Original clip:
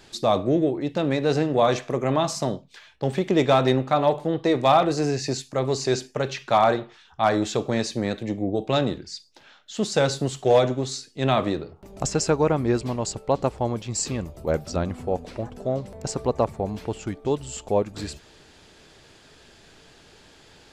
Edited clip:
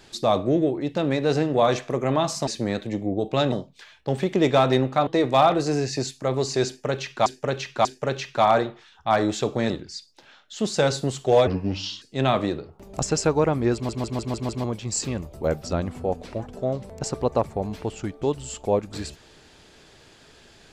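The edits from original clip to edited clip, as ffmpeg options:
-filter_complex "[0:a]asplit=15[a][b][c][d][e][f][g][h][i][j][k][l][m][n][o];[a]atrim=end=2.472[p];[b]atrim=start=7.828:end=8.882[q];[c]atrim=start=2.468:end=4.022[r];[d]atrim=start=4.378:end=6.572[s];[e]atrim=start=5.978:end=6.572[t];[f]atrim=start=5.978:end=7.832[u];[g]atrim=start=8.878:end=10.654[v];[h]atrim=start=10.65:end=11.05,asetpts=PTS-STARTPTS,asetrate=32193,aresample=44100,atrim=end_sample=24164,asetpts=PTS-STARTPTS[w];[i]atrim=start=11.046:end=12.922[x];[j]atrim=start=12.768:end=12.922[y];[k]atrim=start=12.768:end=12.922[z];[l]atrim=start=12.768:end=12.922[aa];[m]atrim=start=12.768:end=12.922[ab];[n]atrim=start=12.768:end=12.922[ac];[o]atrim=start=13.668[ad];[p][q]acrossfade=d=0.004:c1=hsin:c2=hsin[ae];[ae][r]acrossfade=d=0.004:c1=hsin:c2=hsin[af];[af][s]acrossfade=d=0.004:c1=hsin:c2=hsin[ag];[ag][t]acrossfade=d=0.004:c1=hsin:c2=hsin[ah];[ah][u]acrossfade=d=0.004:c1=hsin:c2=hsin[ai];[ai][v]acrossfade=d=0.004:c1=hsin:c2=hsin[aj];[aj][w]acrossfade=d=0.004:c1=hsin:c2=hsin[ak];[ak][x]acrossfade=d=0.004:c1=hsin:c2=hsin[al];[al][y]acrossfade=d=0.004:c1=hsin:c2=hsin[am];[am][z]acrossfade=d=0.004:c1=hsin:c2=hsin[an];[an][aa]acrossfade=d=0.004:c1=hsin:c2=hsin[ao];[ao][ab]acrossfade=d=0.004:c1=hsin:c2=hsin[ap];[ap][ac]acrossfade=d=0.004:c1=hsin:c2=hsin[aq];[aq][ad]acrossfade=d=0.004:c1=hsin:c2=hsin"

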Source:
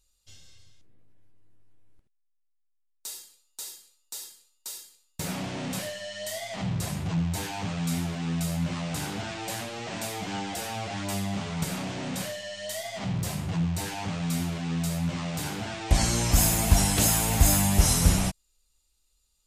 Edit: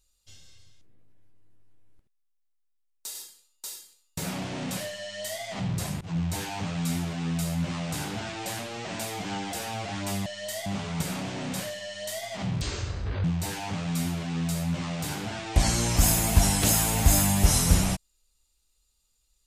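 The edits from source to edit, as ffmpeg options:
-filter_complex "[0:a]asplit=7[a][b][c][d][e][f][g];[a]atrim=end=3.152[h];[b]atrim=start=4.168:end=7.03,asetpts=PTS-STARTPTS,afade=t=out:st=2.858:d=0.004:c=hsin:silence=0.0630957[i];[c]atrim=start=7.03:end=11.282,asetpts=PTS-STARTPTS,afade=t=in:d=0.27:c=qsin:silence=0.0630957[j];[d]atrim=start=6.038:end=6.442[k];[e]atrim=start=11.278:end=13.234[l];[f]atrim=start=13.23:end=13.59,asetpts=PTS-STARTPTS,asetrate=25137,aresample=44100[m];[g]atrim=start=13.586[n];[i][j]concat=n=2:v=0:a=1[o];[h][o]acrossfade=d=0.004:c1=hsin:c2=hsin[p];[p][k]acrossfade=d=0.004:c1=hsin:c2=hsin[q];[q][l]acrossfade=d=0.004:c1=hsin:c2=hsin[r];[r][m]acrossfade=d=0.004:c1=hsin:c2=hsin[s];[s][n]acrossfade=d=0.004:c1=hsin:c2=hsin"

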